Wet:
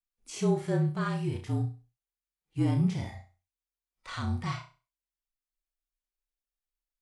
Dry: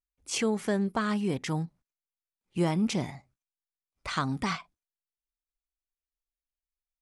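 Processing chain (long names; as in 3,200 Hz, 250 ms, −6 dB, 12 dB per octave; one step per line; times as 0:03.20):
frequency shifter −42 Hz
harmonic and percussive parts rebalanced percussive −16 dB
flutter between parallel walls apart 5.7 metres, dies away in 0.32 s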